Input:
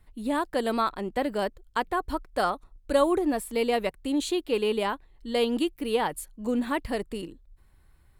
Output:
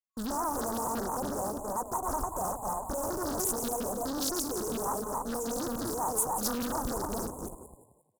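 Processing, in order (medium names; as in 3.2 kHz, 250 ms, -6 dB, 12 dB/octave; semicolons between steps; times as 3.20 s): backward echo that repeats 144 ms, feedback 40%, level -2 dB; small resonant body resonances 910/2300 Hz, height 7 dB, ringing for 25 ms; fuzz box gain 36 dB, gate -43 dBFS; on a send: frequency-shifting echo 177 ms, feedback 34%, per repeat +42 Hz, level -10 dB; on the sum: FFT band-reject 1.1–7 kHz; amplifier tone stack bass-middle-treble 5-5-5; loudspeaker Doppler distortion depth 0.72 ms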